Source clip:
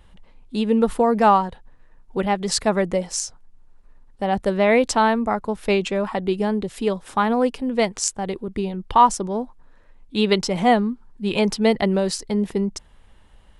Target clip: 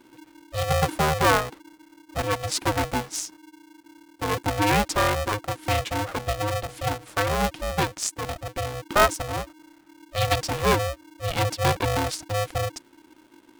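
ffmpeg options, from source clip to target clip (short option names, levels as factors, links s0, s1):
-filter_complex "[0:a]asettb=1/sr,asplit=3[s0][s1][s2];[s0]atrim=end=5.984[s3];[s1]atrim=start=5.98:end=7.19,asetpts=PTS-STARTPTS,afade=t=in:d=0.004:c=qsin,afade=t=out:st=1.206:d=0.004:c=qsin,bandreject=f=60:t=h:w=6,bandreject=f=120:t=h:w=6,bandreject=f=180:t=h:w=6,bandreject=f=240:t=h:w=6,bandreject=f=300:t=h:w=6,bandreject=f=360:t=h:w=6,bandreject=f=420:t=h:w=6,bandreject=f=480:t=h:w=6,bandreject=f=540:t=h:w=6[s4];[s2]atrim=start=7.186[s5];[s3][s4]acrossfade=d=0.004:c1=hsin:c2=qsin[s6];[s6][s5]acrossfade=d=0.004:c1=qsin:c2=hsin,aeval=exprs='val(0)*sgn(sin(2*PI*310*n/s))':c=same,volume=0.596"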